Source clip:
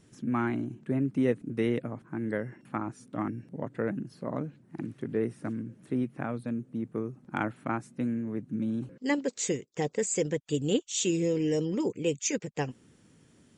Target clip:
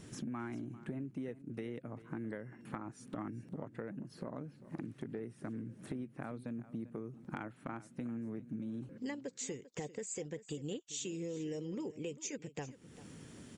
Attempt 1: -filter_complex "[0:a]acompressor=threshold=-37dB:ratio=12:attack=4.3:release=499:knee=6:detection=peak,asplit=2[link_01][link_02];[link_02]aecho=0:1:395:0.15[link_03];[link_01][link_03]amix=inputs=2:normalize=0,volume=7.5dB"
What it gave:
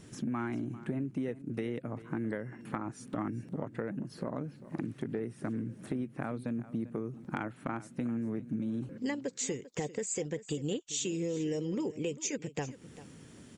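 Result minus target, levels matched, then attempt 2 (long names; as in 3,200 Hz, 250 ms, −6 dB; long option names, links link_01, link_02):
downward compressor: peak gain reduction −7 dB
-filter_complex "[0:a]acompressor=threshold=-44.5dB:ratio=12:attack=4.3:release=499:knee=6:detection=peak,asplit=2[link_01][link_02];[link_02]aecho=0:1:395:0.15[link_03];[link_01][link_03]amix=inputs=2:normalize=0,volume=7.5dB"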